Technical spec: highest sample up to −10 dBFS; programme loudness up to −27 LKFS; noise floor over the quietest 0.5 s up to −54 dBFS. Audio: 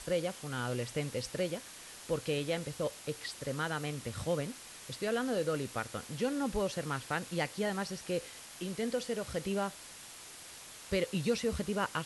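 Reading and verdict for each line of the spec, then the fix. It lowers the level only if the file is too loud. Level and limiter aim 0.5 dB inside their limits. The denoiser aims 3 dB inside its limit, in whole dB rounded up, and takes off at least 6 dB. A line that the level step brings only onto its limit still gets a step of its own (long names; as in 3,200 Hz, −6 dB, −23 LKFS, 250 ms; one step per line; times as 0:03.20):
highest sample −19.5 dBFS: in spec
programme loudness −36.0 LKFS: in spec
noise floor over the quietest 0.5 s −50 dBFS: out of spec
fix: broadband denoise 7 dB, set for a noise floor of −50 dBFS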